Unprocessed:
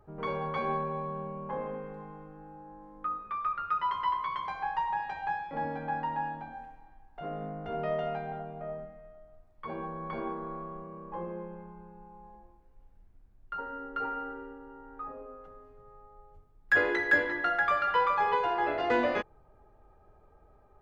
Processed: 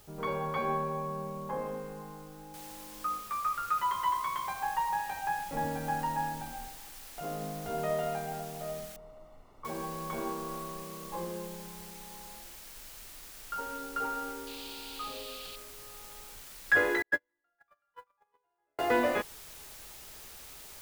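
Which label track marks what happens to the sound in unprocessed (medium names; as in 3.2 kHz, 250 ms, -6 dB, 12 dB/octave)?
2.540000	2.540000	noise floor step -60 dB -49 dB
5.380000	6.680000	bass shelf 110 Hz +10.5 dB
8.960000	9.650000	Savitzky-Golay filter over 65 samples
14.470000	15.560000	high-order bell 3.4 kHz +12 dB 1.1 oct
17.020000	18.790000	gate -21 dBFS, range -52 dB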